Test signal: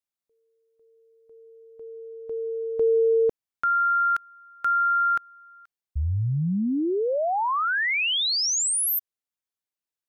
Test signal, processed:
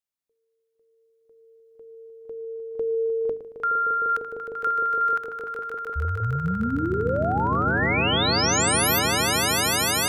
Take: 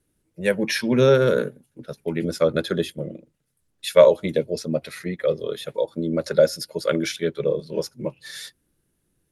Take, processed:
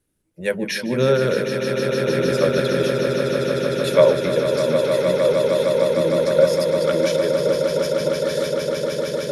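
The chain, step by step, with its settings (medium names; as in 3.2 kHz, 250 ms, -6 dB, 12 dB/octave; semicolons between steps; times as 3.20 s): hum notches 50/100/150/200/250/300/350/400/450 Hz; on a send: echo with a slow build-up 153 ms, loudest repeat 8, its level -8 dB; on the sum: trim -1 dB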